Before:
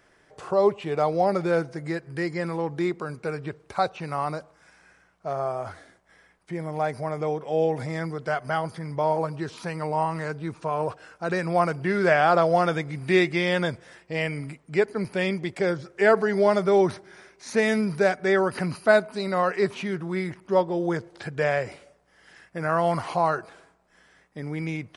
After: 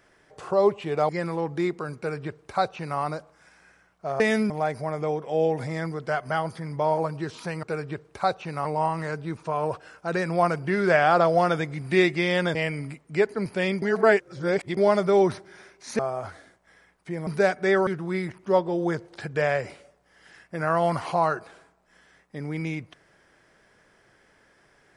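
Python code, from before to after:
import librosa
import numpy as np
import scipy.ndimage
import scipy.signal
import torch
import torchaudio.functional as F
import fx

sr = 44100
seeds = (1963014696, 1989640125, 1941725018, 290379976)

y = fx.edit(x, sr, fx.cut(start_s=1.09, length_s=1.21),
    fx.duplicate(start_s=3.18, length_s=1.02, to_s=9.82),
    fx.swap(start_s=5.41, length_s=1.28, other_s=17.58, other_length_s=0.3),
    fx.cut(start_s=13.72, length_s=0.42),
    fx.reverse_span(start_s=15.41, length_s=0.95),
    fx.cut(start_s=18.48, length_s=1.41), tone=tone)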